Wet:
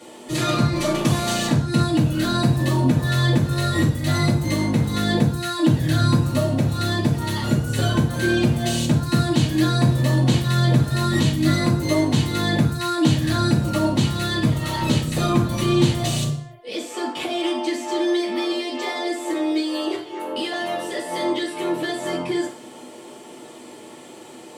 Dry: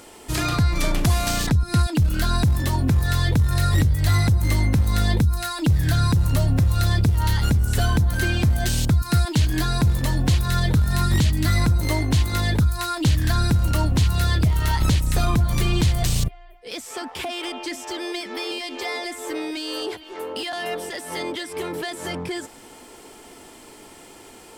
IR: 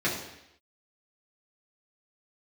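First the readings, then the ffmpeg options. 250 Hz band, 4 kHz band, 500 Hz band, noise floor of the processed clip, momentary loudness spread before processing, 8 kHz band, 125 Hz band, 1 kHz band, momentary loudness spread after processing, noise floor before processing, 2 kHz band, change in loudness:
+6.0 dB, +2.0 dB, +6.0 dB, -41 dBFS, 10 LU, -0.5 dB, -0.5 dB, +2.0 dB, 9 LU, -45 dBFS, +1.0 dB, +0.5 dB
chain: -filter_complex "[1:a]atrim=start_sample=2205,asetrate=74970,aresample=44100[a];[0:a][a]afir=irnorm=-1:irlink=0,volume=-4.5dB"

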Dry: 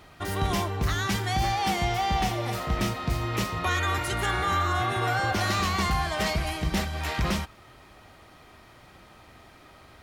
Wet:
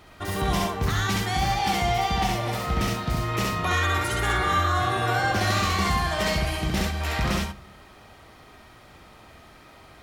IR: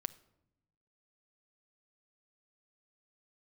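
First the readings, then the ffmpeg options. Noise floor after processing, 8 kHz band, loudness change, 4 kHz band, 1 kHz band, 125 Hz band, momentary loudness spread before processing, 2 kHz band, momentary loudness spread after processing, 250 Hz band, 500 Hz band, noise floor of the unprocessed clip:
-50 dBFS, +2.5 dB, +2.5 dB, +2.5 dB, +2.5 dB, +2.0 dB, 4 LU, +2.5 dB, 4 LU, +2.0 dB, +3.0 dB, -53 dBFS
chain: -filter_complex "[0:a]asplit=2[a][b];[1:a]atrim=start_sample=2205,asetrate=61740,aresample=44100,adelay=67[c];[b][c]afir=irnorm=-1:irlink=0,volume=3.5dB[d];[a][d]amix=inputs=2:normalize=0"

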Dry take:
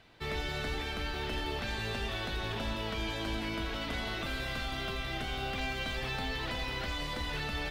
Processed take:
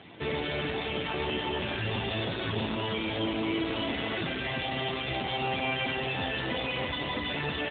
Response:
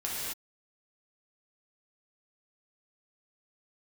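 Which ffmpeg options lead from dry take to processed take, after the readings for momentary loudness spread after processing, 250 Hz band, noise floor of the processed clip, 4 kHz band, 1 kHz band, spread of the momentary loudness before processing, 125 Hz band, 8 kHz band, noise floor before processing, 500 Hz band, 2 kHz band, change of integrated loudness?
2 LU, +7.0 dB, -34 dBFS, +4.0 dB, +5.0 dB, 1 LU, +3.0 dB, under -30 dB, -38 dBFS, +7.0 dB, +3.5 dB, +4.5 dB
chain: -filter_complex "[0:a]highpass=f=57:p=1,equalizer=f=1.4k:w=1.4:g=-7,bandreject=f=50:t=h:w=6,bandreject=f=100:t=h:w=6,bandreject=f=150:t=h:w=6,asplit=2[a][b];[b]alimiter=level_in=10dB:limit=-24dB:level=0:latency=1,volume=-10dB,volume=2.5dB[c];[a][c]amix=inputs=2:normalize=0,asoftclip=type=tanh:threshold=-34dB,aecho=1:1:596:0.112,asplit=2[d][e];[1:a]atrim=start_sample=2205,asetrate=37926,aresample=44100[f];[e][f]afir=irnorm=-1:irlink=0,volume=-11.5dB[g];[d][g]amix=inputs=2:normalize=0,volume=7.5dB" -ar 8000 -c:a libopencore_amrnb -b:a 7400

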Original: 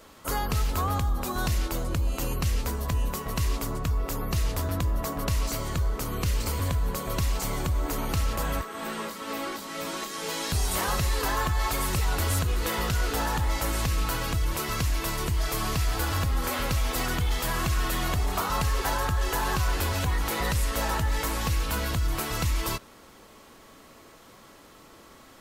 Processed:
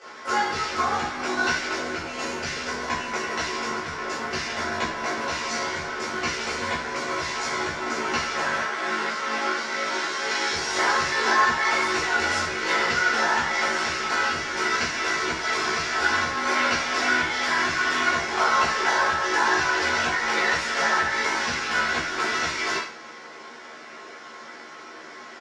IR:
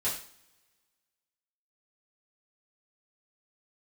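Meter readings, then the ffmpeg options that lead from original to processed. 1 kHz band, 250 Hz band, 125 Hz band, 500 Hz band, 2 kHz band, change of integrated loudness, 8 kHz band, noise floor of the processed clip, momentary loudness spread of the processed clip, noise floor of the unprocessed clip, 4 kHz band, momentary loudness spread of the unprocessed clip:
+7.5 dB, +0.5 dB, -15.5 dB, +4.5 dB, +12.5 dB, +4.5 dB, +1.0 dB, -42 dBFS, 9 LU, -52 dBFS, +6.0 dB, 4 LU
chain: -filter_complex "[0:a]asplit=2[a][b];[b]aeval=exprs='(mod(44.7*val(0)+1,2)-1)/44.7':c=same,volume=-6dB[c];[a][c]amix=inputs=2:normalize=0,highpass=320,equalizer=f=340:t=q:w=4:g=4,equalizer=f=810:t=q:w=4:g=3,equalizer=f=1.5k:t=q:w=4:g=10,equalizer=f=2.1k:t=q:w=4:g=8,equalizer=f=5.5k:t=q:w=4:g=6,lowpass=f=6.2k:w=0.5412,lowpass=f=6.2k:w=1.3066,tremolo=f=51:d=0.919,asplit=2[d][e];[e]adelay=13,volume=-2.5dB[f];[d][f]amix=inputs=2:normalize=0[g];[1:a]atrim=start_sample=2205[h];[g][h]afir=irnorm=-1:irlink=0"

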